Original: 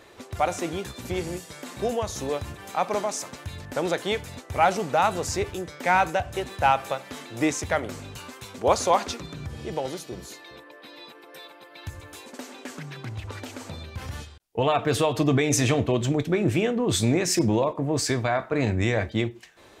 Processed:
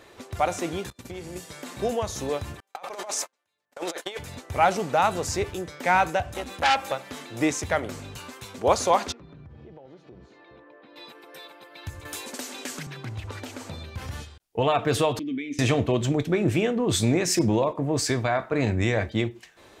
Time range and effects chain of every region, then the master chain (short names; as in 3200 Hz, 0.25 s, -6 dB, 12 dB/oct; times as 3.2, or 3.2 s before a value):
0.9–1.36 gate -38 dBFS, range -25 dB + compressor 2.5:1, threshold -37 dBFS
2.6–4.19 HPF 480 Hz + gate -37 dBFS, range -40 dB + negative-ratio compressor -32 dBFS, ratio -0.5
6.33–6.92 comb 3.7 ms, depth 74% + core saturation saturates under 2900 Hz
9.12–10.96 compressor, threshold -42 dBFS + tape spacing loss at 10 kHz 37 dB
12.05–12.87 high shelf 3100 Hz +10.5 dB + three-band squash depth 70%
15.19–15.59 vowel filter i + low shelf 150 Hz -9 dB
whole clip: dry